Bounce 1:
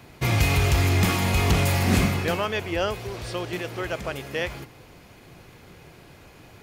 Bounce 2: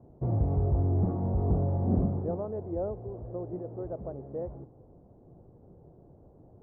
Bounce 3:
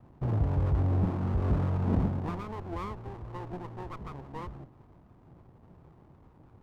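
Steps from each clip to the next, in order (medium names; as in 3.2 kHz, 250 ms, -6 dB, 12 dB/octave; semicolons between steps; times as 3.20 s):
inverse Chebyshev low-pass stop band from 3.1 kHz, stop band 70 dB; trim -5 dB
comb filter that takes the minimum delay 0.85 ms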